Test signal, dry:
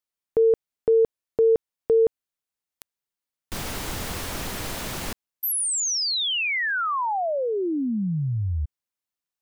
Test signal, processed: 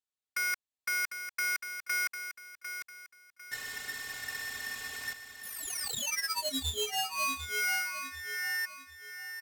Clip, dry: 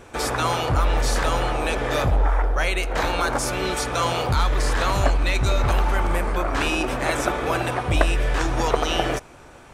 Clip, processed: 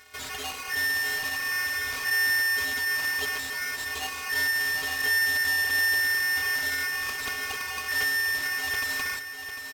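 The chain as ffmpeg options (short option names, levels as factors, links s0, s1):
-af "equalizer=f=5800:w=1.7:g=14,asoftclip=type=tanh:threshold=0.447,afftfilt=real='hypot(re,im)*cos(PI*b)':imag='0':win_size=512:overlap=0.75,aeval=exprs='0.112*(abs(mod(val(0)/0.112+3,4)-2)-1)':c=same,aemphasis=mode=reproduction:type=50kf,aecho=1:1:750|1500|2250|3000:0.355|0.121|0.041|0.0139,aeval=exprs='val(0)*sgn(sin(2*PI*1800*n/s))':c=same,volume=0.596"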